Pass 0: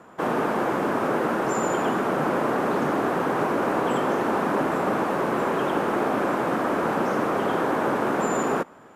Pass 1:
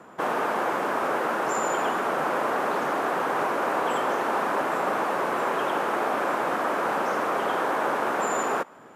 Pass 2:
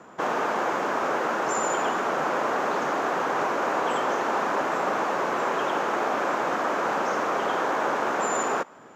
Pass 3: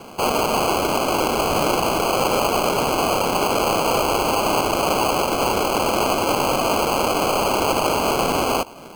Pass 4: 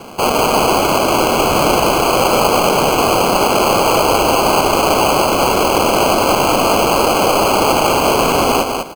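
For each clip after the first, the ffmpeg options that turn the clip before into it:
-filter_complex "[0:a]lowshelf=f=76:g=-10.5,acrossover=split=490|3500[a][b][c];[a]acompressor=threshold=-38dB:ratio=5[d];[d][b][c]amix=inputs=3:normalize=0,volume=1dB"
-af "highshelf=f=7.9k:t=q:w=3:g=-6"
-filter_complex "[0:a]asplit=2[a][b];[b]alimiter=limit=-24dB:level=0:latency=1,volume=1.5dB[c];[a][c]amix=inputs=2:normalize=0,acrusher=samples=24:mix=1:aa=0.000001,volume=2dB"
-af "aecho=1:1:199|398|597:0.562|0.0956|0.0163,volume=5.5dB"

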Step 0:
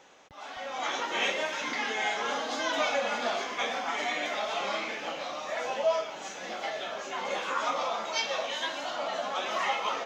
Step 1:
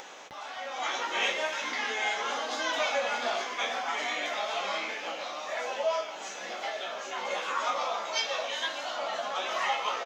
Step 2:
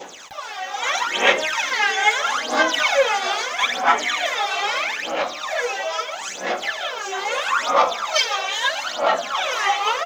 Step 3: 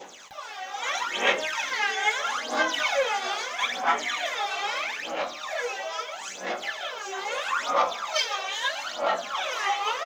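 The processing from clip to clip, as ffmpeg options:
-filter_complex "[0:a]highpass=f=440:p=1,asplit=2[a][b];[b]adelay=16,volume=-8dB[c];[a][c]amix=inputs=2:normalize=0,acompressor=mode=upward:threshold=-36dB:ratio=2.5"
-af "highshelf=f=5.8k:g=8.5,aphaser=in_gain=1:out_gain=1:delay=2.6:decay=0.79:speed=0.77:type=sinusoidal,adynamicequalizer=threshold=0.02:dfrequency=1500:dqfactor=0.94:tfrequency=1500:tqfactor=0.94:attack=5:release=100:ratio=0.375:range=2:mode=boostabove:tftype=bell,volume=3dB"
-filter_complex "[0:a]asplit=2[a][b];[b]adelay=21,volume=-11.5dB[c];[a][c]amix=inputs=2:normalize=0,volume=-7dB"

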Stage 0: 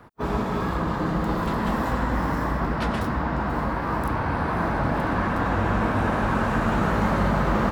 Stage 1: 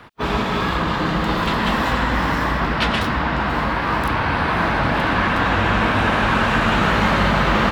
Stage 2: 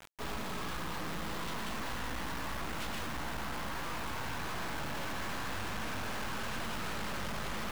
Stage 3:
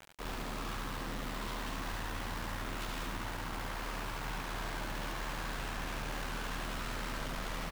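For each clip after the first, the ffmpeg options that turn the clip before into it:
-af "equalizer=f=3.1k:t=o:w=1.8:g=13.5,volume=3dB"
-af "aeval=exprs='(tanh(14.1*val(0)+0.6)-tanh(0.6))/14.1':c=same,acrusher=bits=4:dc=4:mix=0:aa=0.000001,volume=-2.5dB"
-filter_complex "[0:a]aeval=exprs='val(0)*sin(2*PI*38*n/s)':c=same,asplit=2[a][b];[b]aecho=0:1:72:0.631[c];[a][c]amix=inputs=2:normalize=0"

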